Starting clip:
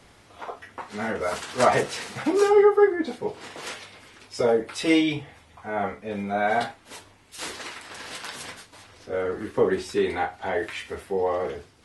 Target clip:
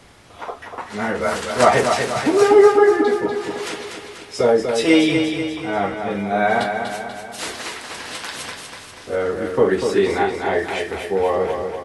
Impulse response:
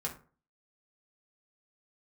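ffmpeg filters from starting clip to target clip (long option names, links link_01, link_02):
-af "aecho=1:1:243|486|729|972|1215|1458|1701:0.501|0.271|0.146|0.0789|0.0426|0.023|0.0124,volume=5.5dB"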